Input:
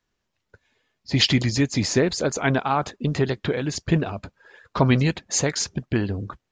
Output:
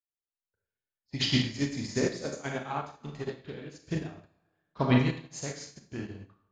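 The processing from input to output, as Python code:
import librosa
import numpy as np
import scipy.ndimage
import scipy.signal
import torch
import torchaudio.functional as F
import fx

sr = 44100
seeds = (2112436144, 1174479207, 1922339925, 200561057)

y = fx.echo_stepped(x, sr, ms=109, hz=3100.0, octaves=-0.7, feedback_pct=70, wet_db=-11)
y = fx.rev_schroeder(y, sr, rt60_s=0.91, comb_ms=28, drr_db=-1.5)
y = fx.upward_expand(y, sr, threshold_db=-31.0, expansion=2.5)
y = y * librosa.db_to_amplitude(-6.0)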